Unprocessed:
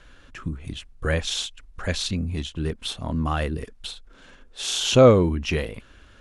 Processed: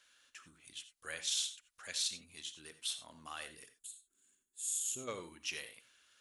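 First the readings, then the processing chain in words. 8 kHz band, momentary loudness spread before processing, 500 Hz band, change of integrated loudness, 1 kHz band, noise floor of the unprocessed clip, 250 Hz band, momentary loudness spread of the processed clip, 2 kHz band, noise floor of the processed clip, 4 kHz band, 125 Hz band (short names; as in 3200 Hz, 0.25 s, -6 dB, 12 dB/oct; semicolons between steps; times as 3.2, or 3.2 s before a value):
-4.5 dB, 21 LU, -30.0 dB, -16.0 dB, -22.0 dB, -52 dBFS, -31.5 dB, 19 LU, -14.5 dB, -84 dBFS, -11.5 dB, -38.0 dB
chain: spectral gain 3.79–5.08, 420–6500 Hz -18 dB; differentiator; non-linear reverb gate 0.11 s rising, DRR 11 dB; gain -3 dB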